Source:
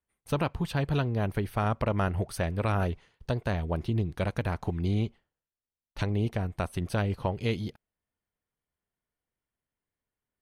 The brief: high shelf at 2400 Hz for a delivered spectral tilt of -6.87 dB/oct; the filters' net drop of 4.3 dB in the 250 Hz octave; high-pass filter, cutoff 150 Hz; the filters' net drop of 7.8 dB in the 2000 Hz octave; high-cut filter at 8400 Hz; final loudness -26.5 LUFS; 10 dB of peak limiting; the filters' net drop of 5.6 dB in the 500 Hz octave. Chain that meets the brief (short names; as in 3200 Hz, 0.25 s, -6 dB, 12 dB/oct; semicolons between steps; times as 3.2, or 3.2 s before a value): HPF 150 Hz; LPF 8400 Hz; bell 250 Hz -3 dB; bell 500 Hz -5.5 dB; bell 2000 Hz -8.5 dB; high shelf 2400 Hz -4.5 dB; gain +14 dB; limiter -14 dBFS